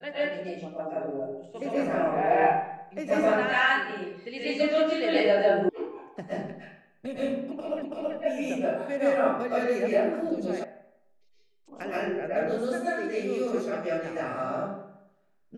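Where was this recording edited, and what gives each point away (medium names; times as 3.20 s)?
5.69 s: sound stops dead
7.82 s: repeat of the last 0.33 s
10.64 s: sound stops dead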